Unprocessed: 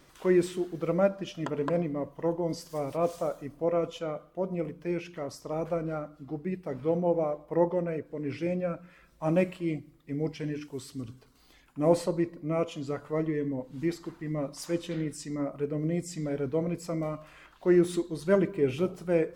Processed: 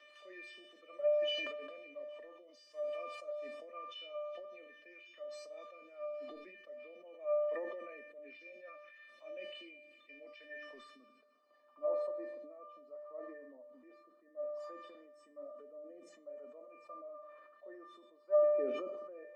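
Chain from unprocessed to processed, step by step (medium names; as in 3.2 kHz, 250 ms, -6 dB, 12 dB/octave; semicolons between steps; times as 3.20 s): steep high-pass 220 Hz 96 dB/octave; treble shelf 6.4 kHz +8 dB; upward compressor, threshold -29 dBFS; low-pass sweep 2.7 kHz -> 1 kHz, 10.18–11.58 s; feedback echo behind a high-pass 135 ms, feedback 82%, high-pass 3.4 kHz, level -17.5 dB; rotary cabinet horn 5 Hz, later 0.65 Hz, at 5.24 s; feedback comb 600 Hz, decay 0.42 s, mix 100%; decay stretcher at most 33 dB/s; trim +3.5 dB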